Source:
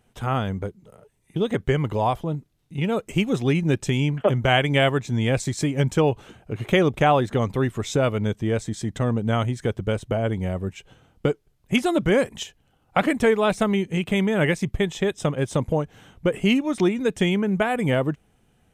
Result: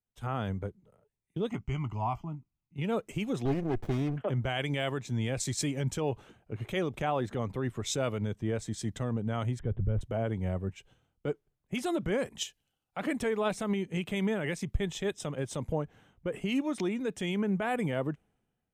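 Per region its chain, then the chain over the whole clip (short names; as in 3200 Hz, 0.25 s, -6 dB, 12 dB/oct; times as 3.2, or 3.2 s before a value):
1.49–2.76 fixed phaser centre 2500 Hz, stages 8 + doubler 17 ms -13 dB
3.45–4.16 bell 300 Hz +5 dB 1.4 oct + comb 2.4 ms, depth 49% + running maximum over 33 samples
9.59–10.01 tilt -3.5 dB/oct + careless resampling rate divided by 6×, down none, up filtered
whole clip: de-esser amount 45%; limiter -17 dBFS; three-band expander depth 70%; gain -5.5 dB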